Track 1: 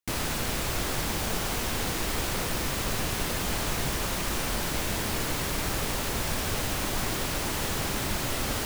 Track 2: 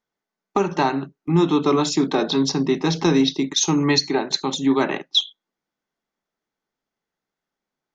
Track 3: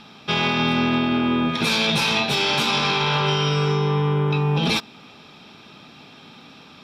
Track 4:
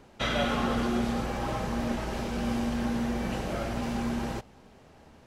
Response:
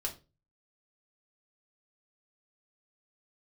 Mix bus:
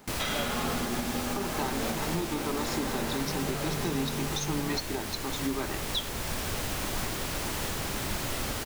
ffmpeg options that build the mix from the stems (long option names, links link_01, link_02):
-filter_complex "[0:a]volume=-2.5dB[link_01];[1:a]adelay=800,volume=-9.5dB[link_02];[2:a]acrusher=samples=15:mix=1:aa=0.000001,volume=-12dB[link_03];[3:a]aemphasis=mode=production:type=bsi,volume=-0.5dB[link_04];[link_01][link_02][link_03][link_04]amix=inputs=4:normalize=0,alimiter=limit=-20dB:level=0:latency=1:release=445"